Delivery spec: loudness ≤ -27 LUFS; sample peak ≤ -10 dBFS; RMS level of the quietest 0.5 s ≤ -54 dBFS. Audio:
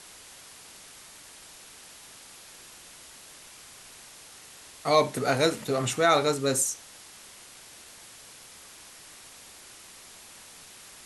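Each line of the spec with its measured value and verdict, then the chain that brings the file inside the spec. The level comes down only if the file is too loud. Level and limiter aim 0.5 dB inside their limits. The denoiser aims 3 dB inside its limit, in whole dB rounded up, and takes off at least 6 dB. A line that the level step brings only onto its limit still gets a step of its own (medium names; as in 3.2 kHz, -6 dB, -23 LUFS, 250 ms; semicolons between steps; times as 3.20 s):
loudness -25.0 LUFS: fail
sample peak -8.0 dBFS: fail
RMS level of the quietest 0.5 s -49 dBFS: fail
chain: noise reduction 6 dB, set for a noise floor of -49 dBFS; trim -2.5 dB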